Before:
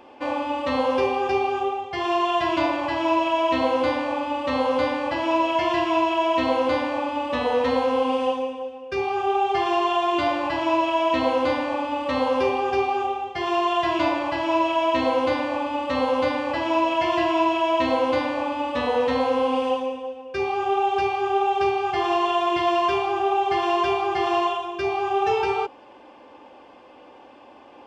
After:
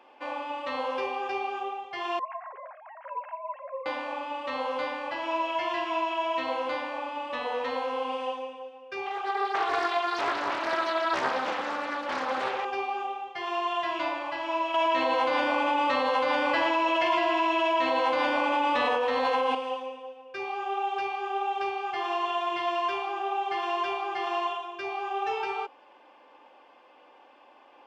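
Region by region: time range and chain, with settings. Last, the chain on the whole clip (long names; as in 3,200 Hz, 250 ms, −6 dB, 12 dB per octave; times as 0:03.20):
0:02.19–0:03.86: three sine waves on the formant tracks + low-pass filter 1,900 Hz 24 dB per octave + tuned comb filter 540 Hz, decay 0.35 s, mix 70%
0:09.06–0:12.65: echo with a time of its own for lows and highs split 500 Hz, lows 112 ms, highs 192 ms, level −5 dB + highs frequency-modulated by the lows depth 0.78 ms
0:14.74–0:19.55: single-tap delay 116 ms −5.5 dB + envelope flattener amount 100%
whole clip: high-pass filter 1,500 Hz 6 dB per octave; high-shelf EQ 3,600 Hz −12 dB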